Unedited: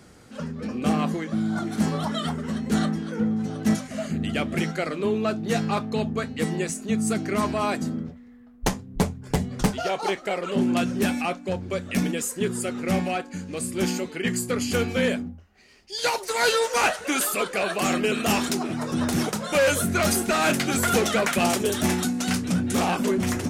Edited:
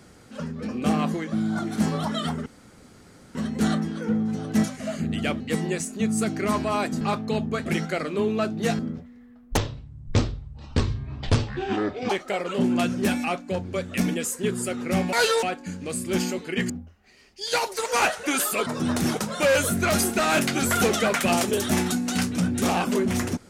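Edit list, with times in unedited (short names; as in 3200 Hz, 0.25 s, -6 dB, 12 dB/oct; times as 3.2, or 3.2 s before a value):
2.46 insert room tone 0.89 s
4.51–5.65 swap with 6.29–7.9
8.68–10.07 speed 55%
14.37–15.21 cut
16.37–16.67 move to 13.1
17.48–18.79 cut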